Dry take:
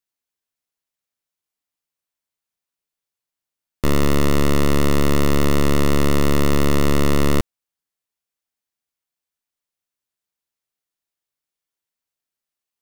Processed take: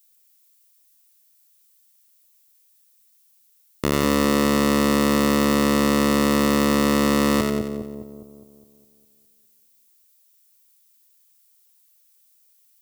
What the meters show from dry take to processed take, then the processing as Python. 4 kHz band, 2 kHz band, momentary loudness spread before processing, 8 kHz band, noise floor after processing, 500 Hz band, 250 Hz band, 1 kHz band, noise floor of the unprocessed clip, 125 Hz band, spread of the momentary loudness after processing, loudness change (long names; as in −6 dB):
+1.5 dB, +1.5 dB, 3 LU, +1.5 dB, −60 dBFS, 0.0 dB, +2.0 dB, +2.5 dB, below −85 dBFS, −7.5 dB, 9 LU, 0.0 dB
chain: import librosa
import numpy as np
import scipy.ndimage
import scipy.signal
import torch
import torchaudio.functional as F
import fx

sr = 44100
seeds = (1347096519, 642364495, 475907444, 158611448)

y = fx.highpass(x, sr, hz=210.0, slope=6)
y = fx.leveller(y, sr, passes=1)
y = fx.echo_split(y, sr, split_hz=760.0, low_ms=205, high_ms=90, feedback_pct=52, wet_db=-3.5)
y = fx.dmg_noise_colour(y, sr, seeds[0], colour='violet', level_db=-59.0)
y = y * librosa.db_to_amplitude(-1.0)